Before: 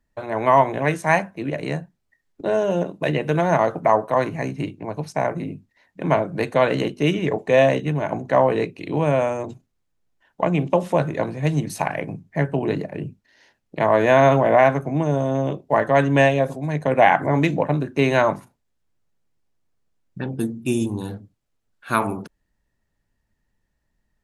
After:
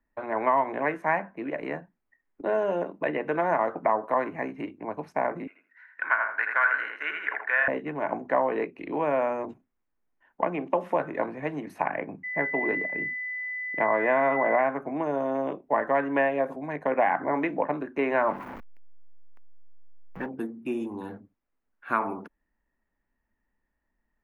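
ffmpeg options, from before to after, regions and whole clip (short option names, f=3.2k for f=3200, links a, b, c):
-filter_complex "[0:a]asettb=1/sr,asplit=3[a][b][c];[a]atrim=end=5.474[d];[b]atrim=start=5.47:end=7.68,asetpts=PTS-STARTPTS,afade=t=in:d=0.004:c=qsin,afade=t=out:st=2.206:d=0.004:c=qsin,highpass=f=1.5k:t=q:w=10,asplit=2[e][f];[f]adelay=81,lowpass=f=3.4k:p=1,volume=-4dB,asplit=2[g][h];[h]adelay=81,lowpass=f=3.4k:p=1,volume=0.23,asplit=2[i][j];[j]adelay=81,lowpass=f=3.4k:p=1,volume=0.23[k];[e][g][i][k]amix=inputs=4:normalize=0,atrim=end_sample=97461[l];[c]atrim=start=7.676[m];[d][l]acrossfade=d=0.004:c1=hsin:c2=qsin[n];[n][m]acrossfade=d=0.004:c1=qsin:c2=hsin,asettb=1/sr,asplit=3[o][p][q];[o]atrim=end=12.234[r];[p]atrim=start=12.23:end=14.62,asetpts=PTS-STARTPTS,afade=t=in:d=0.004:c=qsin,afade=t=out:st=2.386:d=0.004:c=qsin,aeval=exprs='val(0)+0.0708*sin(2*PI*2000*n/s)':c=same,agate=range=-33dB:threshold=-23dB:ratio=3:release=100:detection=peak[s];[q]atrim=start=14.616[t];[r][s]acrossfade=d=0.004:c1=hsin:c2=qsin[u];[u][t]acrossfade=d=0.004:c1=qsin:c2=hsin,asettb=1/sr,asplit=3[v][w][x];[v]atrim=end=18.144[y];[w]atrim=start=18.14:end=20.26,asetpts=PTS-STARTPTS,afade=t=in:d=0.004:c=qsin,afade=t=out:st=2.116:d=0.004:c=qsin,aeval=exprs='val(0)+0.5*0.0376*sgn(val(0))':c=same,lowpass=f=3.4k:p=1[z];[x]atrim=start=20.256[aa];[y][z]acrossfade=d=0.004:c1=hsin:c2=qsin[ab];[ab][aa]acrossfade=d=0.004:c1=qsin:c2=hsin,equalizer=f=125:t=o:w=1:g=-12,equalizer=f=250:t=o:w=1:g=6,equalizer=f=1k:t=o:w=1:g=5,equalizer=f=2k:t=o:w=1:g=6,equalizer=f=4k:t=o:w=1:g=-8,equalizer=f=8k:t=o:w=1:g=-4,acrossover=split=320|2600[ac][ad][ae];[ac]acompressor=threshold=-34dB:ratio=4[af];[ad]acompressor=threshold=-14dB:ratio=4[ag];[ae]acompressor=threshold=-42dB:ratio=4[ah];[af][ag][ah]amix=inputs=3:normalize=0,equalizer=f=8.4k:t=o:w=1.5:g=-12,volume=-6dB"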